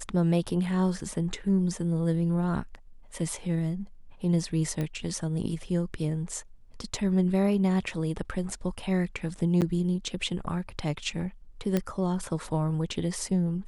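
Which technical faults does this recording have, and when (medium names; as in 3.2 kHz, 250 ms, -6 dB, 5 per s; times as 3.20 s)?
4.81 s: pop -19 dBFS
9.61–9.62 s: dropout 8.4 ms
11.77 s: pop -13 dBFS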